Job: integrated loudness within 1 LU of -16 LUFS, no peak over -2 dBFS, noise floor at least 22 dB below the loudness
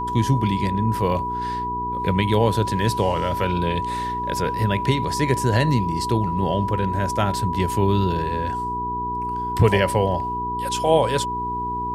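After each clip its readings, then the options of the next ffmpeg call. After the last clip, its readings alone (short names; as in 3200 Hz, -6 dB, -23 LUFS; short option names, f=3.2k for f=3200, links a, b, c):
hum 60 Hz; harmonics up to 420 Hz; hum level -30 dBFS; steady tone 980 Hz; tone level -24 dBFS; loudness -22.0 LUFS; peak -3.5 dBFS; loudness target -16.0 LUFS
-> -af "bandreject=f=60:t=h:w=4,bandreject=f=120:t=h:w=4,bandreject=f=180:t=h:w=4,bandreject=f=240:t=h:w=4,bandreject=f=300:t=h:w=4,bandreject=f=360:t=h:w=4,bandreject=f=420:t=h:w=4"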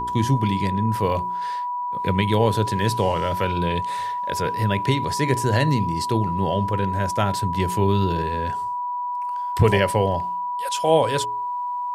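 hum none; steady tone 980 Hz; tone level -24 dBFS
-> -af "bandreject=f=980:w=30"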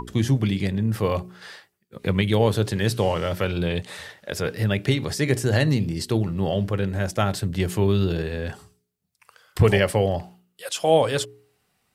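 steady tone none; loudness -23.5 LUFS; peak -4.5 dBFS; loudness target -16.0 LUFS
-> -af "volume=7.5dB,alimiter=limit=-2dB:level=0:latency=1"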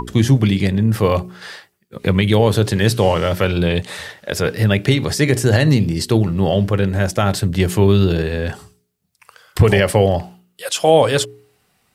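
loudness -16.5 LUFS; peak -2.0 dBFS; noise floor -65 dBFS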